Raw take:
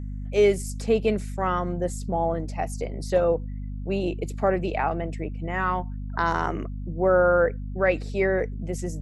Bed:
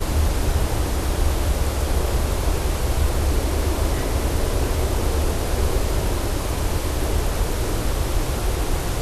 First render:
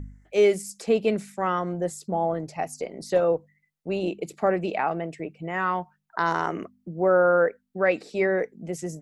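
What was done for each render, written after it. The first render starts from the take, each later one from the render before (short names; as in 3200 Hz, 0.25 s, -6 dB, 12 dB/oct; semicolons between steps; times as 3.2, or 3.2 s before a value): de-hum 50 Hz, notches 5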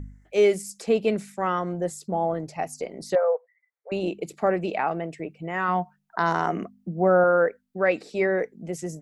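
3.15–3.92 brick-wall FIR band-pass 420–2400 Hz; 5.68–7.24 small resonant body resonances 200/710 Hz, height 8 dB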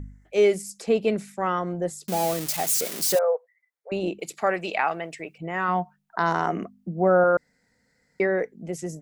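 2.08–3.19 switching spikes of -18 dBFS; 4.19–5.38 tilt shelf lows -8 dB, about 730 Hz; 7.37–8.2 room tone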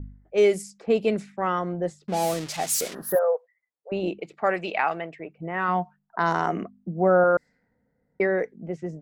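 low-pass opened by the level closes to 730 Hz, open at -19 dBFS; 2.94–3.26 spectral gain 1900–10000 Hz -25 dB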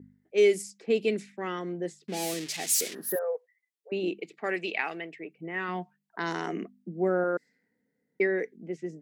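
HPF 270 Hz 12 dB/oct; band shelf 870 Hz -11.5 dB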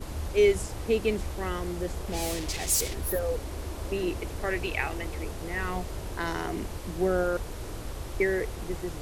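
add bed -14.5 dB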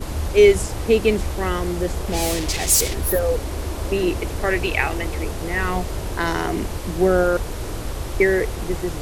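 gain +9 dB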